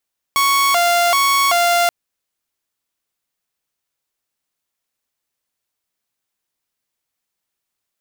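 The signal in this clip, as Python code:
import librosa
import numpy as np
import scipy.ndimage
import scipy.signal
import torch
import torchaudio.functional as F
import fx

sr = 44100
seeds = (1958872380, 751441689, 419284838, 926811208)

y = fx.siren(sr, length_s=1.53, kind='hi-lo', low_hz=695.0, high_hz=1110.0, per_s=1.3, wave='saw', level_db=-10.0)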